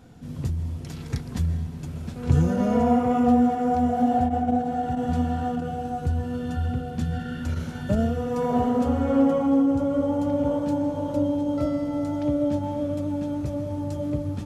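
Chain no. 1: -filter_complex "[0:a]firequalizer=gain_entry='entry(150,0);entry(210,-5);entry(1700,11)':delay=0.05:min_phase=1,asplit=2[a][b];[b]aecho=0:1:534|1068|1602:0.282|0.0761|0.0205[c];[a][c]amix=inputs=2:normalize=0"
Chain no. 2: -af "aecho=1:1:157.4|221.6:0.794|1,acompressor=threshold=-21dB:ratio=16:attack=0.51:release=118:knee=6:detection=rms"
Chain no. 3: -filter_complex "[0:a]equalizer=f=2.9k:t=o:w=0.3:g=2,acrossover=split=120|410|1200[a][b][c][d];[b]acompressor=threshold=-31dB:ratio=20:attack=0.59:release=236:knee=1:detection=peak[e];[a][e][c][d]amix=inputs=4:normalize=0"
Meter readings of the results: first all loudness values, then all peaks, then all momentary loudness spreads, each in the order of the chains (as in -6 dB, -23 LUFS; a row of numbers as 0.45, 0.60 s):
-26.0, -28.5, -28.0 LUFS; -8.5, -19.0, -11.5 dBFS; 8, 3, 6 LU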